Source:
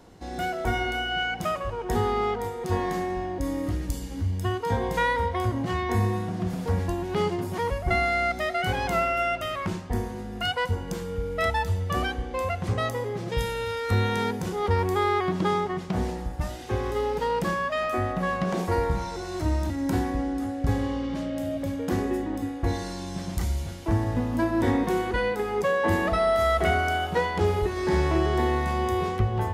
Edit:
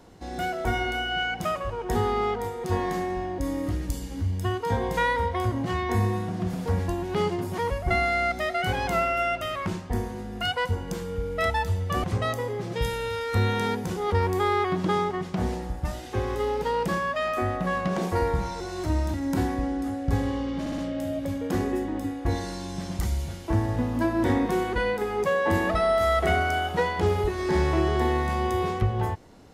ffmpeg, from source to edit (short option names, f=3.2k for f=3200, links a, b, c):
-filter_complex "[0:a]asplit=5[a][b][c][d][e];[a]atrim=end=12.042[f];[b]atrim=start=12.598:end=21.222[g];[c]atrim=start=21.158:end=21.222[h];[d]atrim=start=21.158:end=21.222[i];[e]atrim=start=21.158[j];[f][g]acrossfade=d=0.004:c1=hsin:c2=hsin[k];[k][h]acrossfade=d=0.004:c1=hsin:c2=hsin[l];[l][i]acrossfade=d=0.004:c1=hsin:c2=hsin[m];[m][j]acrossfade=d=0.004:c1=hsin:c2=hsin"